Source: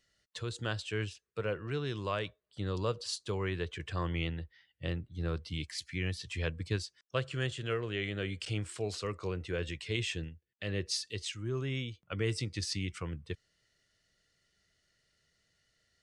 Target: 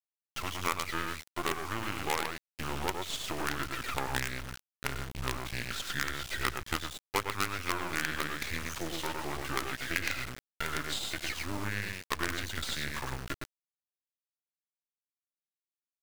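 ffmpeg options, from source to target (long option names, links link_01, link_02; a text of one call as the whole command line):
ffmpeg -i in.wav -af "equalizer=frequency=1600:width=0.71:gain=14,aecho=1:1:106:0.631,acrusher=bits=6:mode=log:mix=0:aa=0.000001,asetrate=34006,aresample=44100,atempo=1.29684,acrusher=bits=4:dc=4:mix=0:aa=0.000001,aemphasis=mode=reproduction:type=75kf,crystalizer=i=4:c=0,acompressor=threshold=-35dB:ratio=2,volume=2.5dB" out.wav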